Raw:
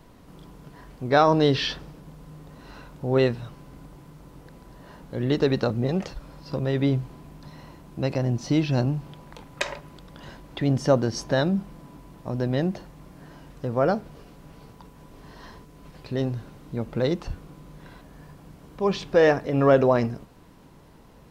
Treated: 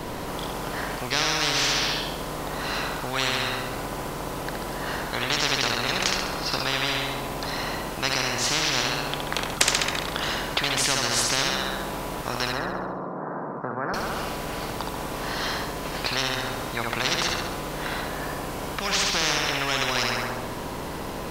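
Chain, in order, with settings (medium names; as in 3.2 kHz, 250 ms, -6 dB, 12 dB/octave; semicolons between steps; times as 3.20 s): 12.52–13.94 s: elliptic band-pass 180–1300 Hz, stop band 40 dB; on a send: flutter echo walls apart 11.6 m, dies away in 0.77 s; on the sum: spectrum-flattening compressor 10:1; trim +2.5 dB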